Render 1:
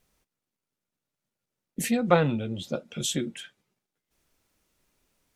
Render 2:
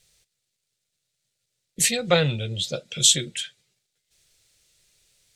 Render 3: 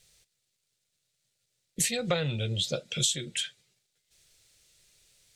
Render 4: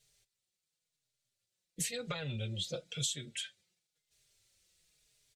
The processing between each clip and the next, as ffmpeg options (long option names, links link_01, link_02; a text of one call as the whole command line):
ffmpeg -i in.wav -af "equalizer=frequency=125:width_type=o:width=1:gain=7,equalizer=frequency=250:width_type=o:width=1:gain=-12,equalizer=frequency=500:width_type=o:width=1:gain=4,equalizer=frequency=1000:width_type=o:width=1:gain=-9,equalizer=frequency=2000:width_type=o:width=1:gain=4,equalizer=frequency=4000:width_type=o:width=1:gain=11,equalizer=frequency=8000:width_type=o:width=1:gain=11,volume=1.5dB" out.wav
ffmpeg -i in.wav -af "acompressor=threshold=-25dB:ratio=6" out.wav
ffmpeg -i in.wav -filter_complex "[0:a]asplit=2[link_01][link_02];[link_02]adelay=4.4,afreqshift=-0.97[link_03];[link_01][link_03]amix=inputs=2:normalize=1,volume=-5.5dB" out.wav